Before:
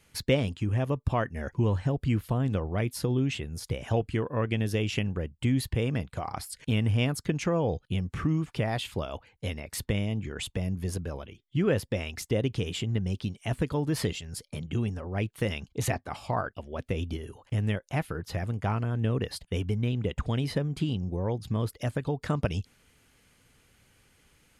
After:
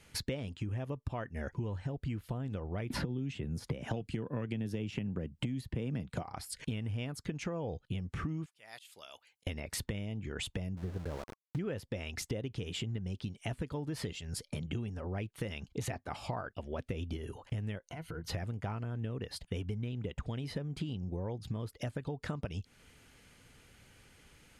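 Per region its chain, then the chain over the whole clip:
2.90–6.23 s: peaking EQ 200 Hz +9 dB 1.8 oct + three bands compressed up and down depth 100%
8.46–9.47 s: differentiator + slow attack 311 ms
10.77–11.59 s: inverse Chebyshev low-pass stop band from 4 kHz, stop band 50 dB + small samples zeroed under -39.5 dBFS
17.84–18.28 s: compression, threshold -42 dBFS + rippled EQ curve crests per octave 1.9, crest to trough 9 dB
whole clip: treble shelf 12 kHz -9 dB; compression 6:1, threshold -38 dBFS; band-stop 1.1 kHz, Q 20; trim +3 dB

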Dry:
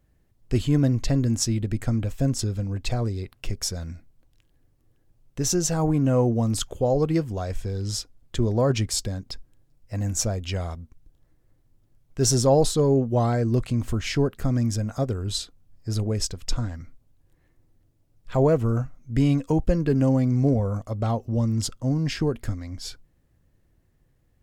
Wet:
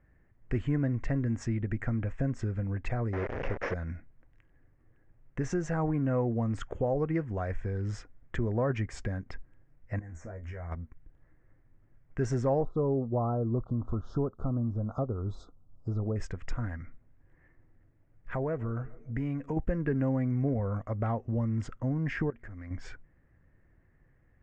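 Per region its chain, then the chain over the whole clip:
3.13–3.74 s: one-bit delta coder 32 kbps, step -29 dBFS + peaking EQ 520 Hz +13.5 dB 0.94 oct
9.99–10.72 s: high-order bell 3.5 kHz -13 dB 1.1 oct + compression 5:1, threshold -31 dBFS + feedback comb 80 Hz, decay 0.16 s, mix 100%
12.61–16.16 s: de-esser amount 70% + Chebyshev band-stop 1.3–3.6 kHz, order 4 + low-pass that closes with the level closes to 1.6 kHz, closed at -21 dBFS
16.77–19.57 s: compression 1.5:1, threshold -39 dBFS + band-passed feedback delay 141 ms, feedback 61%, band-pass 400 Hz, level -21 dB
22.30–22.71 s: compression 4:1, threshold -40 dBFS + hard clipper -36.5 dBFS
whole clip: steep low-pass 7.5 kHz; resonant high shelf 2.8 kHz -14 dB, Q 3; compression 2:1, threshold -32 dBFS

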